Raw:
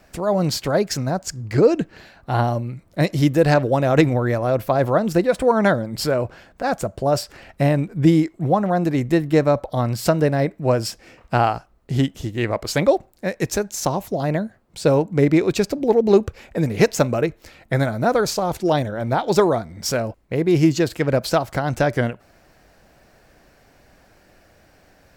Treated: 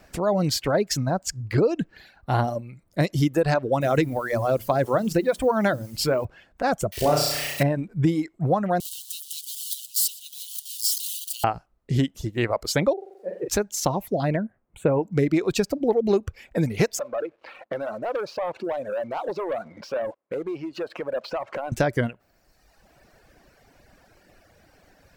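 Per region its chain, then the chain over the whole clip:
0:03.81–0:06.25: mains-hum notches 60/120/180/240/300/360/420 Hz + bit-depth reduction 8 bits, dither triangular
0:06.92–0:07.63: spike at every zero crossing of −25 dBFS + parametric band 2,300 Hz +7.5 dB 2.6 octaves + flutter between parallel walls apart 5.7 metres, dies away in 1.3 s
0:08.80–0:11.44: spike at every zero crossing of −14.5 dBFS + Chebyshev high-pass with heavy ripple 2,900 Hz, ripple 3 dB + single-tap delay 118 ms −11.5 dB
0:12.93–0:13.48: spike at every zero crossing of −19.5 dBFS + resonant band-pass 480 Hz, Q 3.6 + flutter between parallel walls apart 7.5 metres, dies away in 1 s
0:14.36–0:15.03: Butterworth band-reject 5,000 Hz, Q 0.87 + high-shelf EQ 6,500 Hz −11 dB
0:16.99–0:21.72: downward compressor, threshold −31 dBFS + loudspeaker in its box 350–3,500 Hz, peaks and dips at 550 Hz +8 dB, 1,100 Hz +5 dB, 2,000 Hz −5 dB, 3,400 Hz −9 dB + leveller curve on the samples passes 2
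whole clip: reverb reduction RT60 1.2 s; downward compressor 5 to 1, threshold −17 dBFS

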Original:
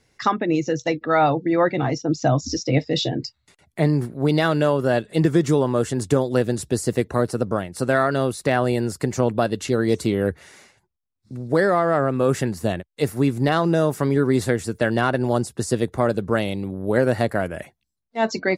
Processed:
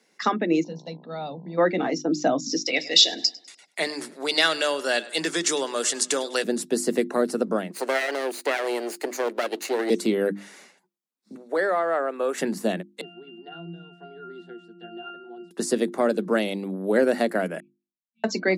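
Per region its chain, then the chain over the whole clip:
0:00.63–0:01.57: drawn EQ curve 210 Hz 0 dB, 320 Hz −21 dB, 520 Hz −13 dB, 1,900 Hz −24 dB, 4,200 Hz −4 dB, 6,600 Hz −22 dB + hum with harmonics 60 Hz, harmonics 17, −45 dBFS −6 dB per octave
0:02.66–0:06.44: meter weighting curve ITU-R 468 + tape delay 101 ms, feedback 46%, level −18 dB, low-pass 5,000 Hz
0:07.70–0:09.90: lower of the sound and its delayed copy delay 0.45 ms + high-pass filter 340 Hz 24 dB per octave
0:11.35–0:12.38: high-pass filter 550 Hz + high-shelf EQ 3,300 Hz −7 dB + notch filter 5,000 Hz, Q 5.3
0:13.01–0:15.51: parametric band 3,400 Hz +9.5 dB 1.4 octaves + resonances in every octave F, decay 0.59 s + multiband upward and downward compressor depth 70%
0:17.60–0:18.24: linear-phase brick-wall band-stop 220–2,300 Hz + high-frequency loss of the air 220 metres + resonances in every octave C#, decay 0.18 s
whole clip: Butterworth high-pass 170 Hz 72 dB per octave; mains-hum notches 50/100/150/200/250/300/350 Hz; dynamic equaliser 1,000 Hz, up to −5 dB, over −33 dBFS, Q 1.7

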